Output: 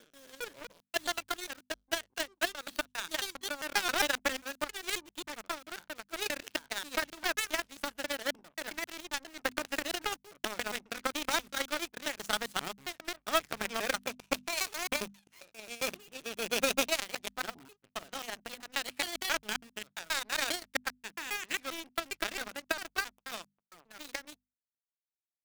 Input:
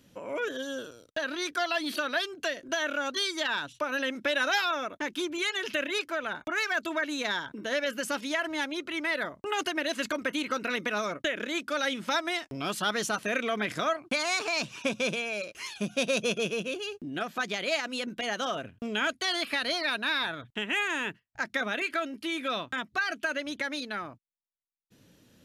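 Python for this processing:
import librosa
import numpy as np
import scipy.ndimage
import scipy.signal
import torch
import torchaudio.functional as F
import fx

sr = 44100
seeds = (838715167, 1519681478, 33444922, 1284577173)

p1 = fx.block_reorder(x, sr, ms=134.0, group=7)
p2 = (np.mod(10.0 ** (32.5 / 20.0) * p1 + 1.0, 2.0) - 1.0) / 10.0 ** (32.5 / 20.0)
p3 = p1 + (p2 * 10.0 ** (-4.0 / 20.0))
p4 = fx.power_curve(p3, sr, exponent=3.0)
p5 = fx.hum_notches(p4, sr, base_hz=50, count=5)
y = p5 * 10.0 ** (7.0 / 20.0)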